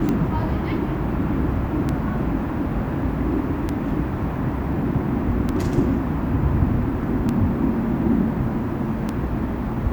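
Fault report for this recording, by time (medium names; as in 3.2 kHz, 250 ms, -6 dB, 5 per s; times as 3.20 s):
tick 33 1/3 rpm -11 dBFS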